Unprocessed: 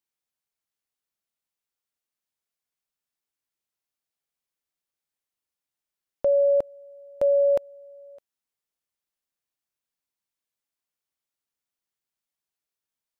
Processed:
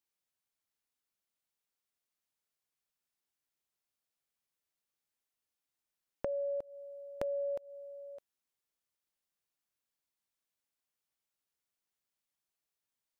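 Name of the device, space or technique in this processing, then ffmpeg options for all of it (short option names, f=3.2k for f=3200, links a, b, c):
serial compression, leveller first: -af "acompressor=threshold=-23dB:ratio=6,acompressor=threshold=-33dB:ratio=6,volume=-1.5dB"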